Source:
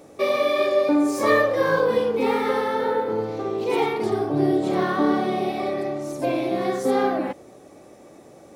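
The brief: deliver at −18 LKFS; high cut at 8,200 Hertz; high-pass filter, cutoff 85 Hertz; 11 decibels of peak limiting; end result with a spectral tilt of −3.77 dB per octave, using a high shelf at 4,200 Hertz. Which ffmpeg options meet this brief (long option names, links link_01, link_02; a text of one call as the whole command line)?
ffmpeg -i in.wav -af "highpass=85,lowpass=8200,highshelf=frequency=4200:gain=8,volume=8dB,alimiter=limit=-9.5dB:level=0:latency=1" out.wav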